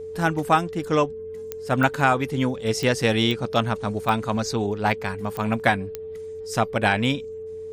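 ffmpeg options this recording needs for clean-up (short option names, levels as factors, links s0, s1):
-af "adeclick=t=4,bandreject=f=90.2:t=h:w=4,bandreject=f=180.4:t=h:w=4,bandreject=f=270.6:t=h:w=4,bandreject=f=440:w=30"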